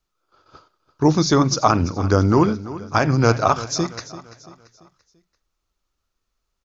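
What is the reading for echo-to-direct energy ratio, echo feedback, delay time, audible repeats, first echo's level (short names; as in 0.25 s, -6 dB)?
-15.0 dB, 43%, 0.339 s, 3, -16.0 dB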